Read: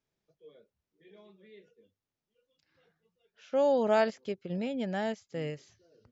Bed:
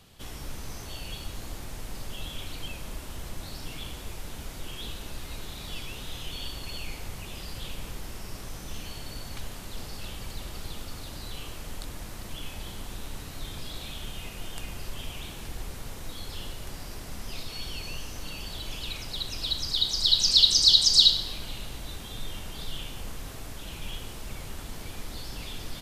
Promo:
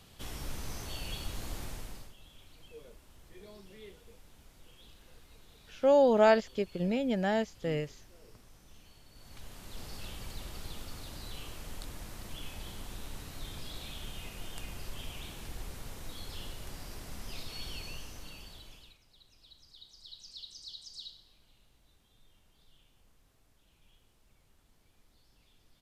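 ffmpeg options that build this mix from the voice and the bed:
ffmpeg -i stem1.wav -i stem2.wav -filter_complex "[0:a]adelay=2300,volume=3dB[link_01];[1:a]volume=12.5dB,afade=type=out:start_time=1.64:duration=0.5:silence=0.133352,afade=type=in:start_time=9.12:duration=0.81:silence=0.199526,afade=type=out:start_time=17.73:duration=1.25:silence=0.0668344[link_02];[link_01][link_02]amix=inputs=2:normalize=0" out.wav

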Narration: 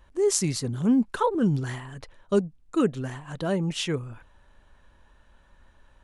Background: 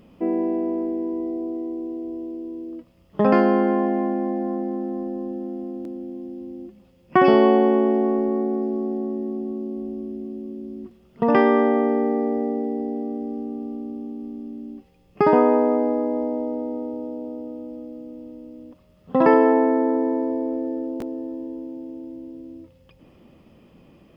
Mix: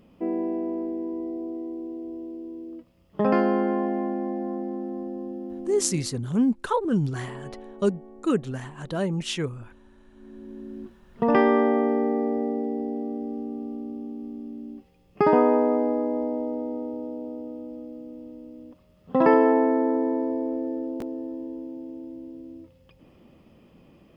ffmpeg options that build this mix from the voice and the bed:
ffmpeg -i stem1.wav -i stem2.wav -filter_complex "[0:a]adelay=5500,volume=-0.5dB[link_01];[1:a]volume=19dB,afade=type=out:start_time=5.96:duration=0.22:silence=0.0841395,afade=type=in:start_time=10.12:duration=0.68:silence=0.0668344[link_02];[link_01][link_02]amix=inputs=2:normalize=0" out.wav

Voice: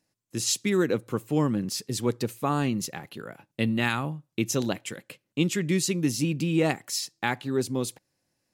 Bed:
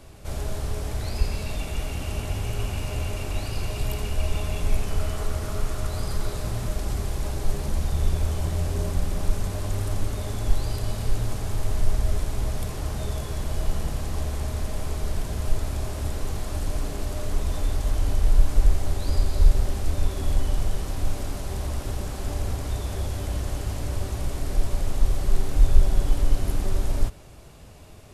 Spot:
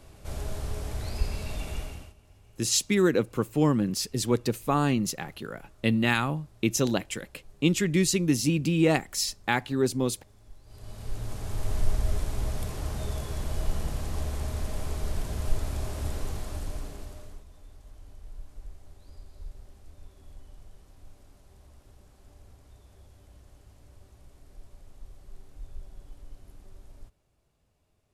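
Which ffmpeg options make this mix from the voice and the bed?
ffmpeg -i stem1.wav -i stem2.wav -filter_complex "[0:a]adelay=2250,volume=1.5dB[link_01];[1:a]volume=20.5dB,afade=type=out:start_time=1.73:duration=0.41:silence=0.0630957,afade=type=in:start_time=10.65:duration=1.11:silence=0.0562341,afade=type=out:start_time=16.16:duration=1.29:silence=0.0794328[link_02];[link_01][link_02]amix=inputs=2:normalize=0" out.wav

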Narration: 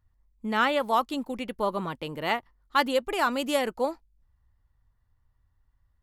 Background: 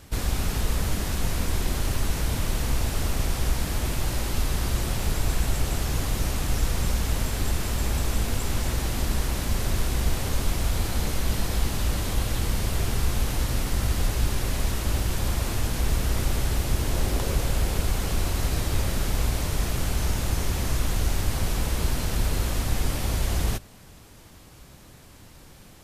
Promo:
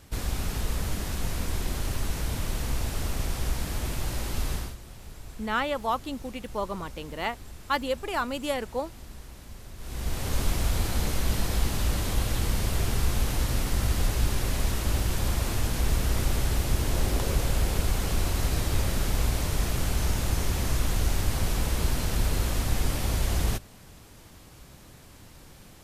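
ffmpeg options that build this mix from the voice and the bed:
ffmpeg -i stem1.wav -i stem2.wav -filter_complex "[0:a]adelay=4950,volume=-3.5dB[link_01];[1:a]volume=13.5dB,afade=type=out:start_time=4.53:duration=0.23:silence=0.188365,afade=type=in:start_time=9.78:duration=0.62:silence=0.133352[link_02];[link_01][link_02]amix=inputs=2:normalize=0" out.wav

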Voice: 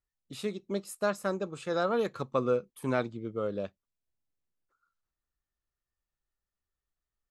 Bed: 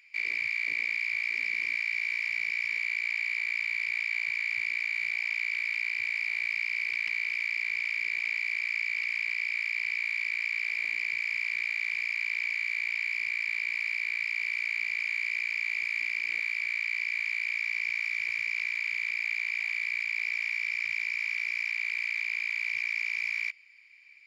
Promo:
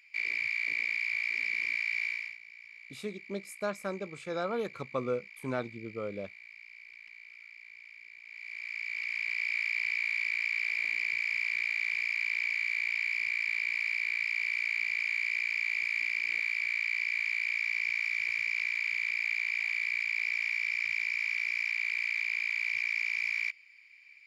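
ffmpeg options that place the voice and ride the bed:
ffmpeg -i stem1.wav -i stem2.wav -filter_complex "[0:a]adelay=2600,volume=-4.5dB[link_01];[1:a]volume=18dB,afade=type=out:start_time=2.04:duration=0.34:silence=0.11885,afade=type=in:start_time=8.25:duration=1.29:silence=0.105925[link_02];[link_01][link_02]amix=inputs=2:normalize=0" out.wav

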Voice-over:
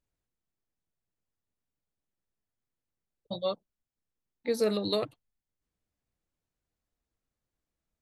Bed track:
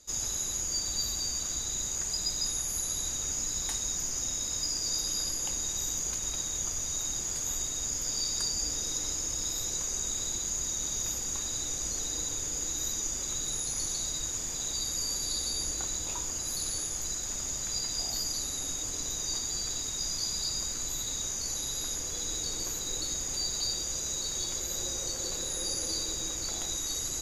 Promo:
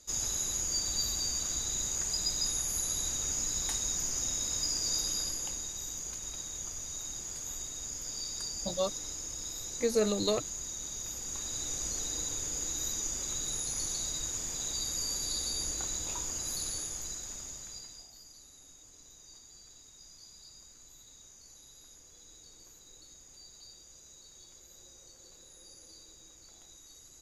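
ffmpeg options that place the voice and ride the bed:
ffmpeg -i stem1.wav -i stem2.wav -filter_complex "[0:a]adelay=5350,volume=-0.5dB[link_01];[1:a]volume=4.5dB,afade=type=out:start_time=4.98:duration=0.74:silence=0.473151,afade=type=in:start_time=11.08:duration=0.67:silence=0.562341,afade=type=out:start_time=16.5:duration=1.59:silence=0.112202[link_02];[link_01][link_02]amix=inputs=2:normalize=0" out.wav

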